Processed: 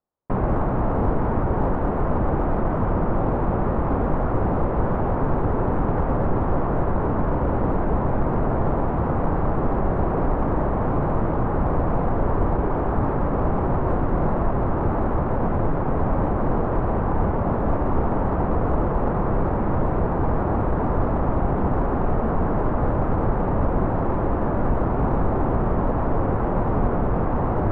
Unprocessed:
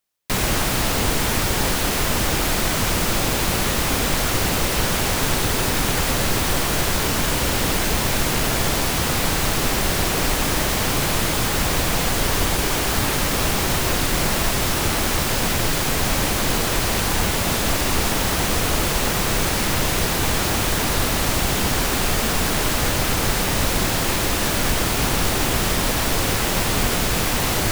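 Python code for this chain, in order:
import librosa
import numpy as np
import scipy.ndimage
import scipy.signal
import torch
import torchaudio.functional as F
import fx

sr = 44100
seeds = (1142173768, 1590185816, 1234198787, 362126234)

p1 = scipy.signal.sosfilt(scipy.signal.butter(4, 1100.0, 'lowpass', fs=sr, output='sos'), x)
p2 = np.clip(p1, -10.0 ** (-19.5 / 20.0), 10.0 ** (-19.5 / 20.0))
y = p1 + (p2 * 10.0 ** (-12.0 / 20.0))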